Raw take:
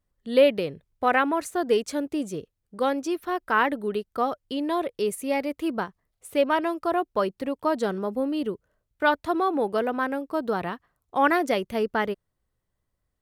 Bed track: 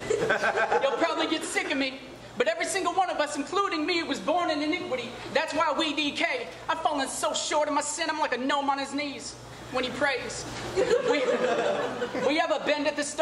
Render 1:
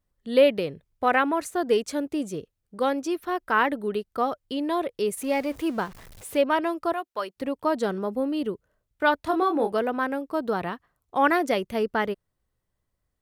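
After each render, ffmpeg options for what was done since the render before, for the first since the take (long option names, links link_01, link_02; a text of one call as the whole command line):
ffmpeg -i in.wav -filter_complex "[0:a]asettb=1/sr,asplit=3[link_01][link_02][link_03];[link_01]atrim=end=5.174[link_04];[link_02]atrim=start=5.17:end=6.37,asetpts=PTS-STARTPTS,afade=type=in:duration=0.004:curve=qsin,afade=type=out:start_time=1.196:duration=0.004:curve=qsin,aeval=exprs='val(0)+0.5*0.00944*sgn(val(0))':channel_layout=same[link_05];[link_03]atrim=start=6.366[link_06];[link_04][link_05]acrossfade=duration=0.004:curve1=hsin:curve2=qsin[link_07];[link_07][link_06]acrossfade=duration=0.004:curve1=qsin:curve2=hsin,asplit=3[link_08][link_09][link_10];[link_08]afade=type=out:start_time=6.92:duration=0.02[link_11];[link_09]highpass=frequency=1200:poles=1,afade=type=in:start_time=6.92:duration=0.02,afade=type=out:start_time=7.36:duration=0.02[link_12];[link_10]afade=type=in:start_time=7.36:duration=0.02[link_13];[link_11][link_12][link_13]amix=inputs=3:normalize=0,asettb=1/sr,asplit=3[link_14][link_15][link_16];[link_14]atrim=end=9.224[link_17];[link_15]atrim=start=9.22:end=9.72,asetpts=PTS-STARTPTS,afade=type=in:duration=0.004:curve=qsin,afade=type=out:start_time=0.496:duration=0.004:curve=qsin,asplit=2[link_18][link_19];[link_19]adelay=27,volume=-6dB[link_20];[link_18][link_20]amix=inputs=2:normalize=0,atrim=end_sample=22050[link_21];[link_16]atrim=start=9.716[link_22];[link_17][link_21]acrossfade=duration=0.004:curve1=hsin:curve2=qsin[link_23];[link_23][link_22]acrossfade=duration=0.004:curve1=qsin:curve2=hsin" out.wav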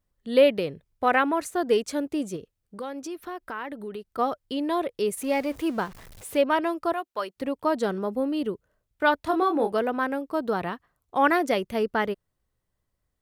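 ffmpeg -i in.wav -filter_complex "[0:a]asettb=1/sr,asplit=3[link_01][link_02][link_03];[link_01]atrim=end=2.364[link_04];[link_02]atrim=start=2.36:end=4.19,asetpts=PTS-STARTPTS,afade=type=in:duration=0.004:curve=qsin,afade=type=out:start_time=1.826:duration=0.004:curve=qsin,acompressor=threshold=-34dB:ratio=3:attack=3.2:release=140:knee=1:detection=peak[link_05];[link_03]atrim=start=4.186[link_06];[link_04][link_05]acrossfade=duration=0.004:curve1=hsin:curve2=qsin[link_07];[link_07][link_06]acrossfade=duration=0.004:curve1=qsin:curve2=hsin" out.wav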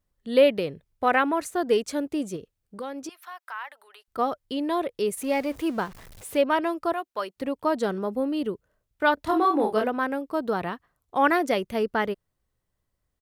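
ffmpeg -i in.wav -filter_complex "[0:a]asettb=1/sr,asplit=3[link_01][link_02][link_03];[link_01]atrim=end=3.094[link_04];[link_02]atrim=start=3.09:end=4.08,asetpts=PTS-STARTPTS,afade=type=in:duration=0.004:curve=qsin,afade=type=out:start_time=0.986:duration=0.004:curve=qsin,highpass=frequency=830:width=0.5412,highpass=frequency=830:width=1.3066[link_05];[link_03]atrim=start=4.076[link_06];[link_04][link_05]acrossfade=duration=0.004:curve1=hsin:curve2=qsin[link_07];[link_07][link_06]acrossfade=duration=0.004:curve1=qsin:curve2=hsin,asplit=3[link_08][link_09][link_10];[link_08]afade=type=out:start_time=9.17:duration=0.02[link_11];[link_09]asplit=2[link_12][link_13];[link_13]adelay=28,volume=-3.5dB[link_14];[link_12][link_14]amix=inputs=2:normalize=0,afade=type=in:start_time=9.17:duration=0.02,afade=type=out:start_time=9.87:duration=0.02[link_15];[link_10]afade=type=in:start_time=9.87:duration=0.02[link_16];[link_11][link_15][link_16]amix=inputs=3:normalize=0" out.wav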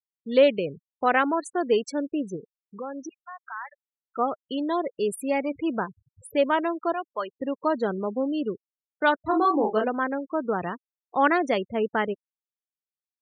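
ffmpeg -i in.wav -af "highpass=frequency=66:width=0.5412,highpass=frequency=66:width=1.3066,afftfilt=real='re*gte(hypot(re,im),0.0251)':imag='im*gte(hypot(re,im),0.0251)':win_size=1024:overlap=0.75" out.wav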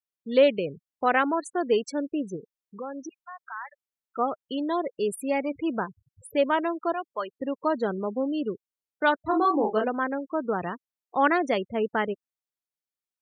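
ffmpeg -i in.wav -af "volume=-1dB" out.wav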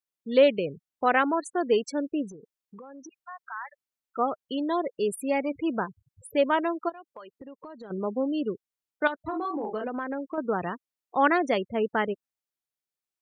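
ffmpeg -i in.wav -filter_complex "[0:a]asettb=1/sr,asplit=3[link_01][link_02][link_03];[link_01]atrim=end=2.314[link_04];[link_02]atrim=start=2.31:end=3.2,asetpts=PTS-STARTPTS,afade=type=in:duration=0.004:curve=qsin,afade=type=out:start_time=0.886:duration=0.004:curve=qsin,acompressor=threshold=-42dB:ratio=6:attack=3.2:release=140:knee=1:detection=peak[link_05];[link_03]atrim=start=3.196[link_06];[link_04][link_05]acrossfade=duration=0.004:curve1=hsin:curve2=qsin[link_07];[link_07][link_06]acrossfade=duration=0.004:curve1=qsin:curve2=hsin,asplit=3[link_08][link_09][link_10];[link_08]afade=type=out:start_time=6.88:duration=0.02[link_11];[link_09]acompressor=threshold=-40dB:ratio=8:attack=3.2:release=140:knee=1:detection=peak,afade=type=in:start_time=6.88:duration=0.02,afade=type=out:start_time=7.9:duration=0.02[link_12];[link_10]afade=type=in:start_time=7.9:duration=0.02[link_13];[link_11][link_12][link_13]amix=inputs=3:normalize=0,asettb=1/sr,asplit=3[link_14][link_15][link_16];[link_14]atrim=end=9.074[link_17];[link_15]atrim=start=9.07:end=10.38,asetpts=PTS-STARTPTS,afade=type=in:duration=0.004:curve=qsin,afade=type=out:start_time=1.306:duration=0.004:curve=qsin,acompressor=threshold=-27dB:ratio=10:attack=3.2:release=140:knee=1:detection=peak[link_18];[link_16]atrim=start=10.376[link_19];[link_17][link_18]acrossfade=duration=0.004:curve1=hsin:curve2=qsin[link_20];[link_20][link_19]acrossfade=duration=0.004:curve1=qsin:curve2=hsin" out.wav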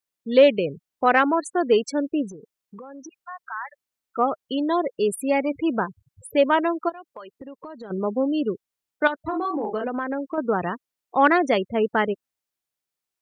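ffmpeg -i in.wav -af "acontrast=21" out.wav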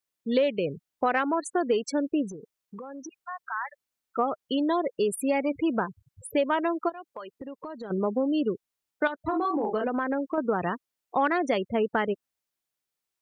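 ffmpeg -i in.wav -af "acompressor=threshold=-22dB:ratio=4" out.wav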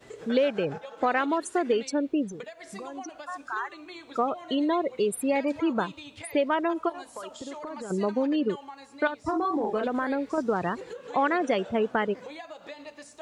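ffmpeg -i in.wav -i bed.wav -filter_complex "[1:a]volume=-17dB[link_01];[0:a][link_01]amix=inputs=2:normalize=0" out.wav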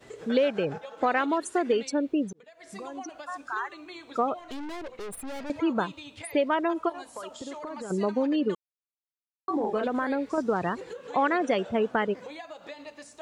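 ffmpeg -i in.wav -filter_complex "[0:a]asettb=1/sr,asplit=3[link_01][link_02][link_03];[link_01]atrim=end=4.394[link_04];[link_02]atrim=start=4.39:end=5.5,asetpts=PTS-STARTPTS,afade=type=in:duration=0.004:curve=qsin,afade=type=out:start_time=1.106:duration=0.004:curve=qsin,aeval=exprs='(tanh(63.1*val(0)+0.6)-tanh(0.6))/63.1':channel_layout=same[link_05];[link_03]atrim=start=5.496[link_06];[link_04][link_05]acrossfade=duration=0.004:curve1=hsin:curve2=qsin[link_07];[link_07][link_06]acrossfade=duration=0.004:curve1=qsin:curve2=hsin,asplit=4[link_08][link_09][link_10][link_11];[link_08]atrim=end=2.33,asetpts=PTS-STARTPTS,afade=type=out:start_time=2.326:duration=0.004:curve=hsin[link_12];[link_09]atrim=start=2.33:end=8.55,asetpts=PTS-STARTPTS,afade=type=in:duration=0.5,afade=type=out:start_time=6.216:duration=0.004:curve=hsin[link_13];[link_10]atrim=start=8.55:end=9.48,asetpts=PTS-STARTPTS,volume=0[link_14];[link_11]atrim=start=9.48,asetpts=PTS-STARTPTS,afade=type=in:duration=0.004:curve=hsin[link_15];[link_12][link_13][link_14][link_15]concat=n=4:v=0:a=1" out.wav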